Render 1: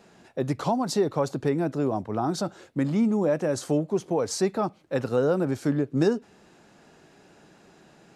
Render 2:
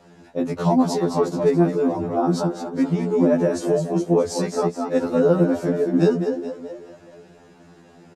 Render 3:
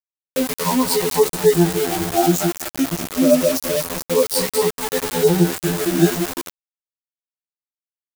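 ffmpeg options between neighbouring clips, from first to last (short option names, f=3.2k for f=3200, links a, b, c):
-filter_complex "[0:a]tiltshelf=f=880:g=3.5,asplit=6[a][b][c][d][e][f];[b]adelay=213,afreqshift=39,volume=-7.5dB[g];[c]adelay=426,afreqshift=78,volume=-14.1dB[h];[d]adelay=639,afreqshift=117,volume=-20.6dB[i];[e]adelay=852,afreqshift=156,volume=-27.2dB[j];[f]adelay=1065,afreqshift=195,volume=-33.7dB[k];[a][g][h][i][j][k]amix=inputs=6:normalize=0,afftfilt=real='re*2*eq(mod(b,4),0)':imag='im*2*eq(mod(b,4),0)':win_size=2048:overlap=0.75,volume=5.5dB"
-af "afftfilt=real='re*pow(10,21/40*sin(2*PI*(0.92*log(max(b,1)*sr/1024/100)/log(2)-(-0.27)*(pts-256)/sr)))':imag='im*pow(10,21/40*sin(2*PI*(0.92*log(max(b,1)*sr/1024/100)/log(2)-(-0.27)*(pts-256)/sr)))':win_size=1024:overlap=0.75,aeval=exprs='val(0)*gte(abs(val(0)),0.0944)':c=same,crystalizer=i=3:c=0,volume=-4dB"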